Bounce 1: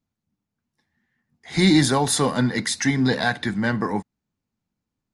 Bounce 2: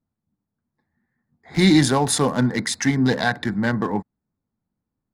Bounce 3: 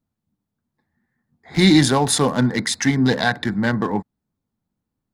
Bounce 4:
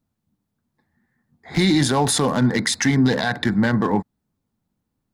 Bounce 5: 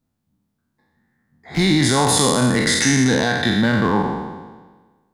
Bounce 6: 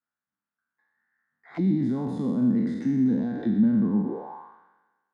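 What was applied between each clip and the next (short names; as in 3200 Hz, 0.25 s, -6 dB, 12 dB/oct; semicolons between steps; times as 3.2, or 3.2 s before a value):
Wiener smoothing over 15 samples; gain +1.5 dB
bell 3500 Hz +2.5 dB; gain +1.5 dB
limiter -13 dBFS, peak gain reduction 9.5 dB; gain +3.5 dB
spectral trails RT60 1.36 s; gain -1 dB
auto-wah 220–1500 Hz, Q 3.6, down, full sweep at -14 dBFS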